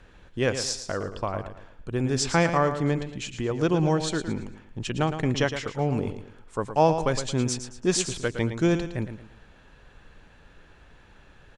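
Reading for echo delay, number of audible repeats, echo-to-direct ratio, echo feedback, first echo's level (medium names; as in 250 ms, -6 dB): 112 ms, 3, -9.0 dB, 35%, -9.5 dB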